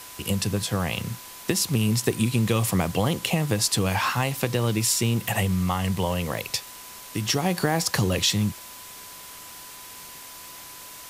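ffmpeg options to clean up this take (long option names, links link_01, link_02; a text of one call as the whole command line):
ffmpeg -i in.wav -af "adeclick=threshold=4,bandreject=frequency=1000:width=30,afwtdn=0.0089" out.wav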